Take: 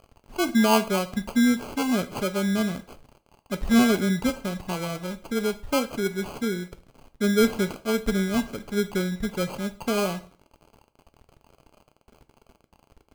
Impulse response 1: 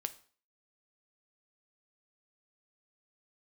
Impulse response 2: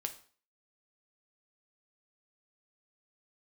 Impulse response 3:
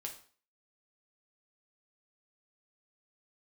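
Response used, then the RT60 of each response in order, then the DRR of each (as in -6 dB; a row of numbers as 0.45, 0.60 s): 1; 0.45, 0.45, 0.45 s; 9.0, 5.0, 0.5 dB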